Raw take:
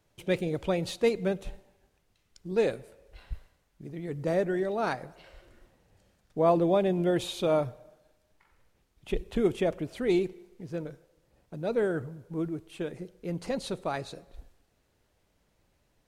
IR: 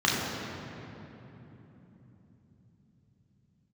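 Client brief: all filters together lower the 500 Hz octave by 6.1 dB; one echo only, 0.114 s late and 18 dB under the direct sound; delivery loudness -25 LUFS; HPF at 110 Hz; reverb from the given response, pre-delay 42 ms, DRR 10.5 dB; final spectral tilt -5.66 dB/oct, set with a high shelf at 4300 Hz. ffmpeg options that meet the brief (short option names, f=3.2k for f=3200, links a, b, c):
-filter_complex "[0:a]highpass=110,equalizer=f=500:t=o:g=-8,highshelf=f=4.3k:g=-4,aecho=1:1:114:0.126,asplit=2[a][b];[1:a]atrim=start_sample=2205,adelay=42[c];[b][c]afir=irnorm=-1:irlink=0,volume=-26dB[d];[a][d]amix=inputs=2:normalize=0,volume=9.5dB"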